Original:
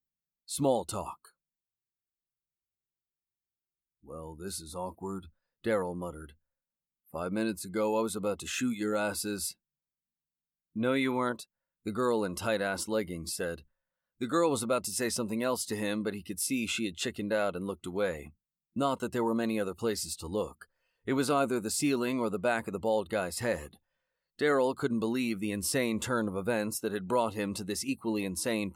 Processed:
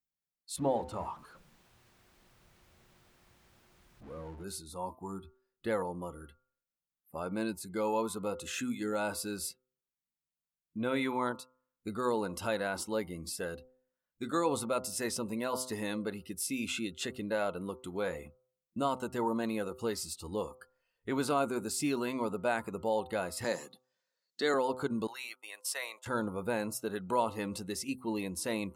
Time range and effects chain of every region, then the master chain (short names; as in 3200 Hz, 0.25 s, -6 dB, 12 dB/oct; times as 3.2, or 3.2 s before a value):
0.56–4.44 zero-crossing step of -41.5 dBFS + LPF 1400 Hz 6 dB/oct + notches 50/100/150/200/250/300/350/400/450 Hz
23.44–24.54 HPF 170 Hz 24 dB/oct + band shelf 5300 Hz +10 dB 1.2 oct
25.07–26.06 gate -34 dBFS, range -28 dB + HPF 700 Hz 24 dB/oct
whole clip: de-hum 127.8 Hz, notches 11; dynamic EQ 890 Hz, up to +5 dB, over -46 dBFS, Q 2.8; gain -3.5 dB